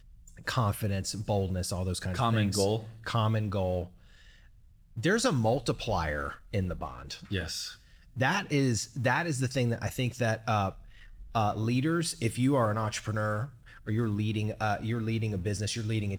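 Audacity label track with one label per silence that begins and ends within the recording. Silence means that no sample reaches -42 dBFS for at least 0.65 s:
3.870000	4.970000	silence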